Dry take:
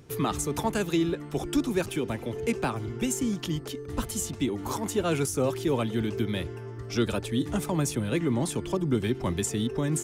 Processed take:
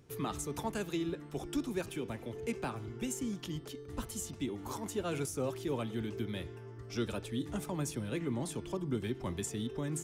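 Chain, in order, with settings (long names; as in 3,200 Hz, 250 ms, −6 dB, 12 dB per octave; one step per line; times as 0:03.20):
hum removal 162.8 Hz, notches 37
level −9 dB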